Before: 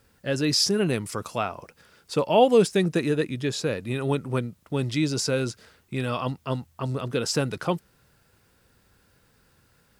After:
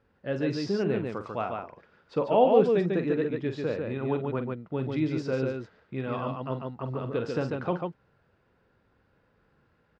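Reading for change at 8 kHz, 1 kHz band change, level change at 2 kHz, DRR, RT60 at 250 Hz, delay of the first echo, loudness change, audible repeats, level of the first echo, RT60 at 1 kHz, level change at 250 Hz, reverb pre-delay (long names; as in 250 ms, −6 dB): below −20 dB, −2.5 dB, −6.5 dB, no reverb audible, no reverb audible, 45 ms, −3.5 dB, 2, −10.0 dB, no reverb audible, −3.0 dB, no reverb audible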